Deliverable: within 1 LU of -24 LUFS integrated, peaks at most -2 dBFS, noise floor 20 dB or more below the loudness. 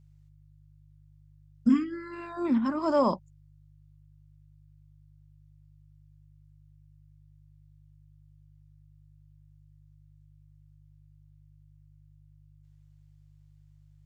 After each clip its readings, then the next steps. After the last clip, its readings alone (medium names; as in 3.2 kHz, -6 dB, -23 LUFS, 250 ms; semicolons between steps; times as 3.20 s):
hum 50 Hz; highest harmonic 150 Hz; hum level -55 dBFS; loudness -28.0 LUFS; peak level -13.0 dBFS; loudness target -24.0 LUFS
-> de-hum 50 Hz, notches 3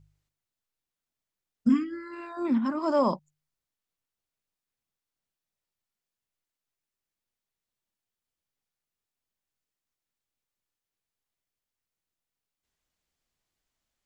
hum not found; loudness -27.0 LUFS; peak level -13.0 dBFS; loudness target -24.0 LUFS
-> trim +3 dB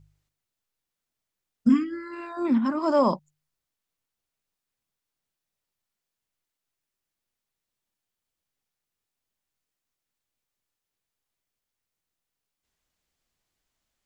loudness -24.0 LUFS; peak level -10.0 dBFS; noise floor -87 dBFS